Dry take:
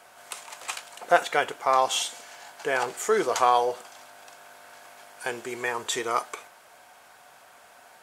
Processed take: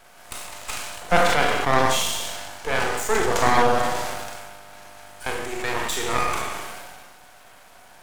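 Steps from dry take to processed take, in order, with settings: steep high-pass 180 Hz 96 dB/oct; Schroeder reverb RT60 0.91 s, combs from 31 ms, DRR 0 dB; half-wave rectifier; sustainer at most 29 dB/s; gain +4 dB

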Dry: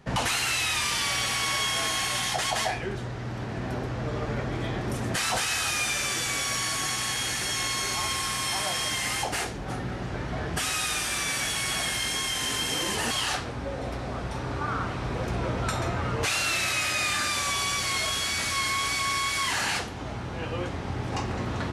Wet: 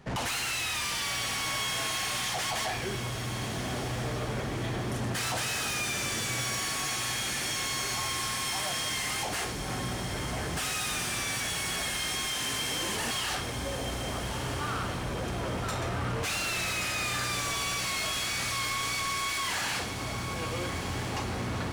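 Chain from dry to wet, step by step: soft clip -28.5 dBFS, distortion -11 dB; diffused feedback echo 1.379 s, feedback 44%, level -8 dB

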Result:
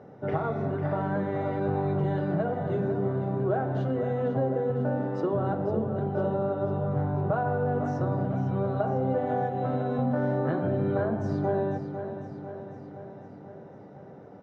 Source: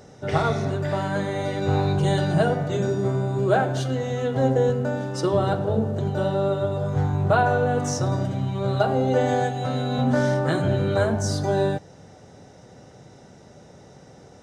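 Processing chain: HPF 120 Hz; on a send at -19 dB: reverb RT60 0.50 s, pre-delay 3 ms; on the sum: compressor, threshold -24 dBFS, peak gain reduction 9.5 dB; LPF 1300 Hz 12 dB/oct; feedback echo 0.5 s, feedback 60%, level -10 dB

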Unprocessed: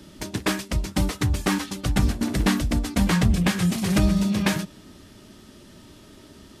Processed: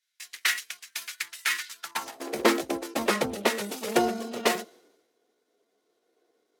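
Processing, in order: pitch shift +2.5 st; high-pass sweep 1800 Hz -> 480 Hz, 1.68–2.32; three-band expander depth 100%; gain -3.5 dB

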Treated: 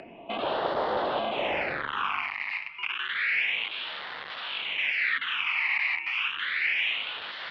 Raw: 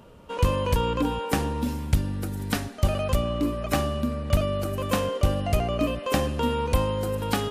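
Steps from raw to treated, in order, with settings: 5.76–6.52 low shelf 140 Hz -7.5 dB; limiter -16 dBFS, peak gain reduction 7 dB; 2.5–3.09 compressor 16:1, threshold -29 dBFS, peak gain reduction 8.5 dB; wrapped overs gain 27.5 dB; high-pass sweep 880 Hz -> 2400 Hz, 1.65–2.45; mistuned SSB -250 Hz 310–3300 Hz; phaser stages 8, 0.3 Hz, lowest notch 440–2400 Hz; upward compressor, threshold -49 dBFS; gain +7.5 dB

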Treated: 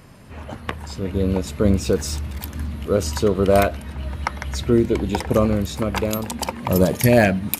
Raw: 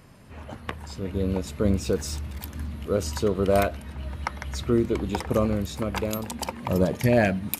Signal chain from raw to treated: 4.56–5.36 notch 1200 Hz, Q 5.2; 6.72–7.25 high shelf 6300 Hz +11.5 dB; gain +5.5 dB

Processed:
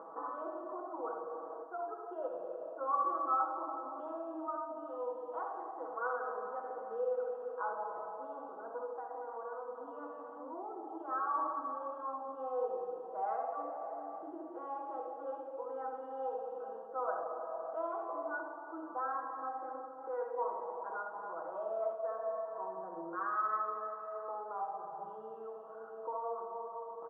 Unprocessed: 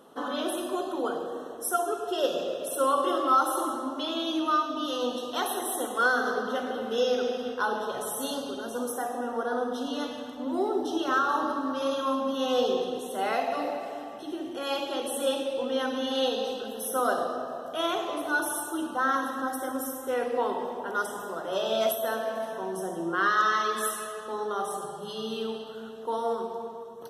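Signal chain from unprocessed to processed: low shelf 290 Hz -9 dB; upward compressor, threshold -27 dBFS; steep low-pass 1100 Hz 36 dB/oct; differentiator; comb 6.2 ms, depth 80%; 8.91–11.09 compressor, threshold -50 dBFS, peak gain reduction 5 dB; early reflections 65 ms -9.5 dB, 79 ms -9.5 dB; gain +10 dB; Opus 128 kbps 48000 Hz

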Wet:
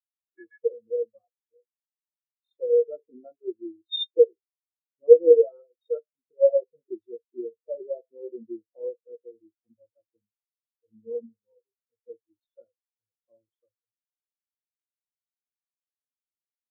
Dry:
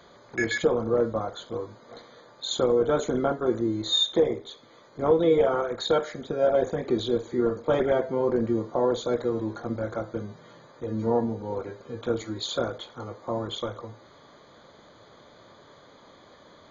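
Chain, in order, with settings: spectral expander 4:1; gain +8.5 dB

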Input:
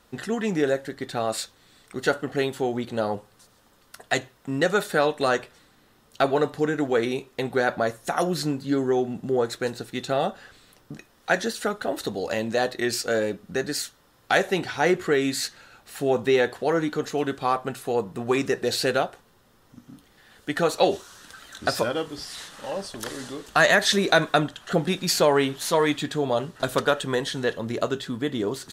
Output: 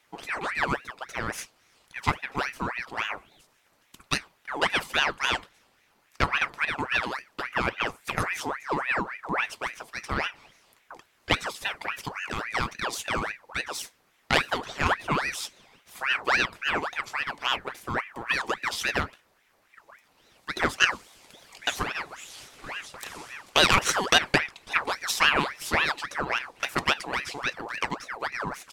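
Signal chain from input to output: spectral repair 3.16–3.39, 1300–2700 Hz before; added harmonics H 3 -14 dB, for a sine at -7 dBFS; ring modulator with a swept carrier 1400 Hz, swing 60%, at 3.6 Hz; gain +4.5 dB

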